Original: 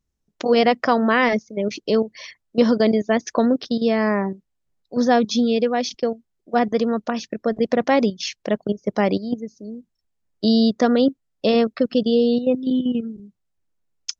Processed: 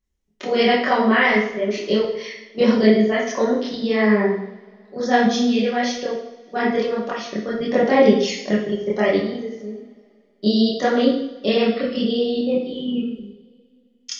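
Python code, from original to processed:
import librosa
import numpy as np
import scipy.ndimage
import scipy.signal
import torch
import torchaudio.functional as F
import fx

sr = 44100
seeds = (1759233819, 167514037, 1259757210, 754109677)

y = fx.chorus_voices(x, sr, voices=4, hz=1.4, base_ms=26, depth_ms=3.0, mix_pct=60)
y = fx.graphic_eq_31(y, sr, hz=(400, 2000, 3150), db=(6, 7, 5))
y = fx.rev_double_slope(y, sr, seeds[0], early_s=0.68, late_s=2.5, knee_db=-22, drr_db=-1.0)
y = y * librosa.db_to_amplitude(-1.0)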